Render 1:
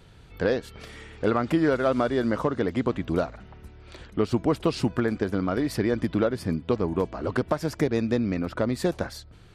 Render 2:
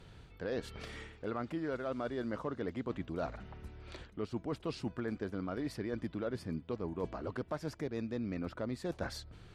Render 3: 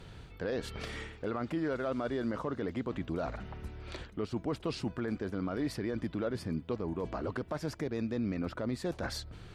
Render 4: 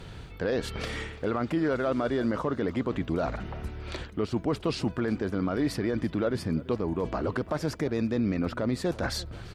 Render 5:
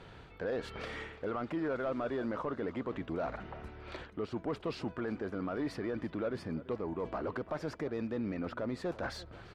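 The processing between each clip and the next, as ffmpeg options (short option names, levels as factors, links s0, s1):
-af "highshelf=f=12000:g=-12,areverse,acompressor=threshold=0.0282:ratio=10,areverse,volume=0.708"
-af "alimiter=level_in=2.11:limit=0.0631:level=0:latency=1:release=25,volume=0.473,volume=1.88"
-filter_complex "[0:a]asplit=2[s0][s1];[s1]adelay=338.2,volume=0.112,highshelf=f=4000:g=-7.61[s2];[s0][s2]amix=inputs=2:normalize=0,volume=2.11"
-filter_complex "[0:a]asplit=2[s0][s1];[s1]highpass=f=720:p=1,volume=3.98,asoftclip=type=tanh:threshold=0.133[s2];[s0][s2]amix=inputs=2:normalize=0,lowpass=f=1300:p=1,volume=0.501,volume=0.422"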